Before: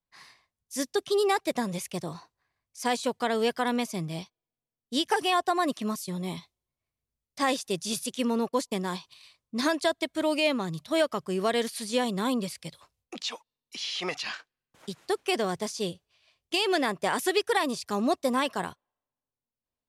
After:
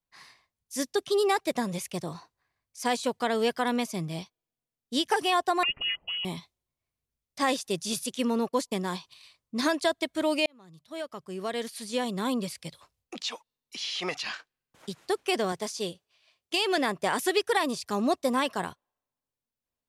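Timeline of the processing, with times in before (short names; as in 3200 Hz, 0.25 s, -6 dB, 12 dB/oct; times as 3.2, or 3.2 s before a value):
5.63–6.25 inverted band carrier 3100 Hz
10.46–12.57 fade in
15.52–16.78 HPF 240 Hz 6 dB/oct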